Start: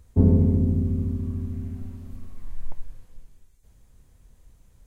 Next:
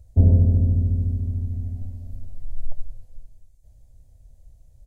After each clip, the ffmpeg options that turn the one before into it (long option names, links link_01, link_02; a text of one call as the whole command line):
ffmpeg -i in.wav -af "firequalizer=gain_entry='entry(110,0);entry(170,-11);entry(240,-10);entry(410,-13);entry(610,0);entry(1100,-23);entry(1800,-17);entry(3000,-15);entry(4500,-9)':delay=0.05:min_phase=1,volume=4.5dB" out.wav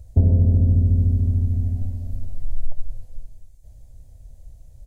ffmpeg -i in.wav -af "acompressor=threshold=-19dB:ratio=5,volume=6.5dB" out.wav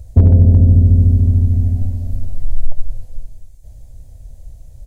ffmpeg -i in.wav -af "volume=9dB,asoftclip=hard,volume=-9dB,volume=7.5dB" out.wav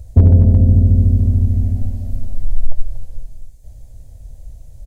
ffmpeg -i in.wav -af "aecho=1:1:235:0.237" out.wav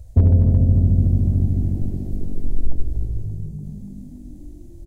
ffmpeg -i in.wav -filter_complex "[0:a]asplit=8[link_01][link_02][link_03][link_04][link_05][link_06][link_07][link_08];[link_02]adelay=289,afreqshift=48,volume=-13.5dB[link_09];[link_03]adelay=578,afreqshift=96,volume=-17.8dB[link_10];[link_04]adelay=867,afreqshift=144,volume=-22.1dB[link_11];[link_05]adelay=1156,afreqshift=192,volume=-26.4dB[link_12];[link_06]adelay=1445,afreqshift=240,volume=-30.7dB[link_13];[link_07]adelay=1734,afreqshift=288,volume=-35dB[link_14];[link_08]adelay=2023,afreqshift=336,volume=-39.3dB[link_15];[link_01][link_09][link_10][link_11][link_12][link_13][link_14][link_15]amix=inputs=8:normalize=0,volume=-5dB" out.wav